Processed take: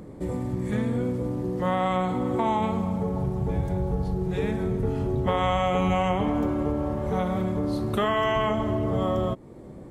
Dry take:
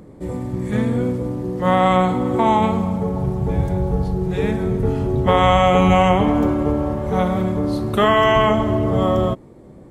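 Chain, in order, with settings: compression 2:1, threshold -28 dBFS, peak gain reduction 10 dB

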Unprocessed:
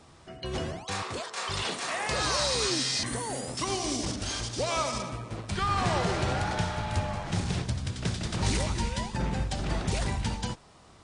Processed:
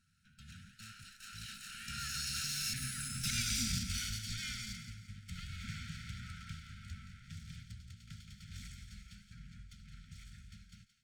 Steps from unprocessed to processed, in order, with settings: comb filter that takes the minimum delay 0.82 ms; Doppler pass-by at 3.43 s, 35 m/s, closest 16 m; brick-wall FIR band-stop 250–1300 Hz; thinning echo 172 ms, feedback 37%, high-pass 1.1 kHz, level -10.5 dB

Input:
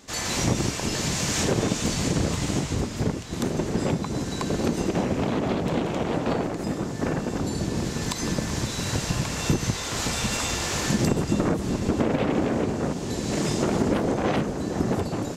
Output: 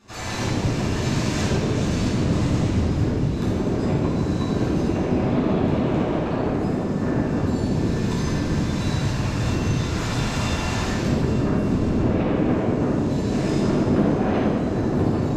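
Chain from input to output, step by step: treble shelf 4.4 kHz -10 dB; peak limiter -17 dBFS, peak gain reduction 6 dB; reverberation RT60 2.0 s, pre-delay 9 ms, DRR -8.5 dB; trim -9 dB

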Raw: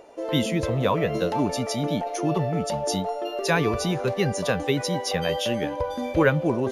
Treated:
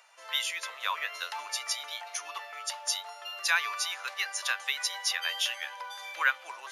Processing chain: high-pass 1.2 kHz 24 dB/octave; trim +1 dB

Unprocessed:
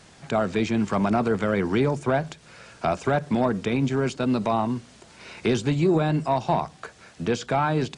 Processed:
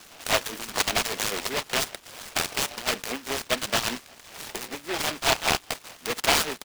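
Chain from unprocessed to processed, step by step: steep low-pass 2 kHz 36 dB/octave; peak limiter -20.5 dBFS, peak gain reduction 10.5 dB; small resonant body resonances 250/1200 Hz, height 7 dB, ringing for 45 ms; LFO high-pass sine 4.2 Hz 650–1500 Hz; careless resampling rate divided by 8×, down filtered, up hold; tempo 1.2×; delay time shaken by noise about 1.8 kHz, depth 0.27 ms; trim +4 dB

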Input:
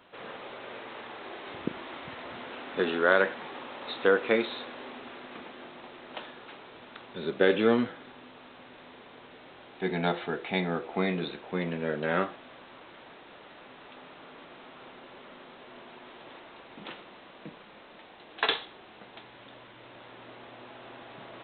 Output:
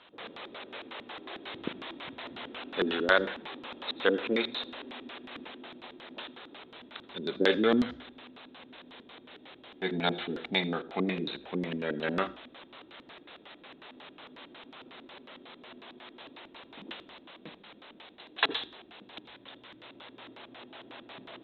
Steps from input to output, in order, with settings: bass shelf 270 Hz -8 dB; LFO low-pass square 5.5 Hz 290–4000 Hz; on a send: reverberation RT60 0.35 s, pre-delay 74 ms, DRR 21 dB

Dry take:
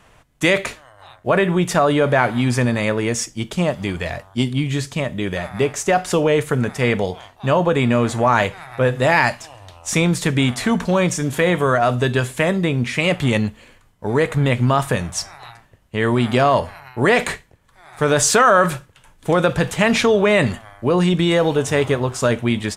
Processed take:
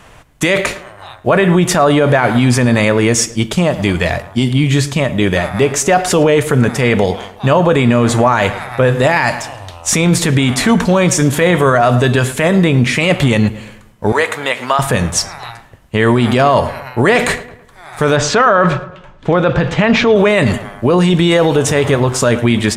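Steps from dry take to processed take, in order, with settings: 14.12–14.79 s: high-pass 700 Hz 12 dB/octave; 18.16–20.16 s: distance through air 180 m; on a send: filtered feedback delay 109 ms, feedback 43%, low-pass 3 kHz, level -17.5 dB; on the sum: loudness maximiser +11 dB; trim -1 dB

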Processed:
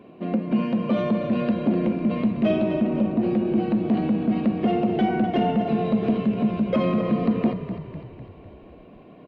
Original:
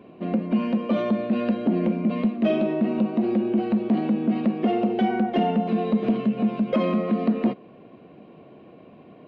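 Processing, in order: 2.81–3.23 s: treble shelf 2.9 kHz -12 dB; on a send: frequency-shifting echo 251 ms, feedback 56%, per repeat -31 Hz, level -10 dB

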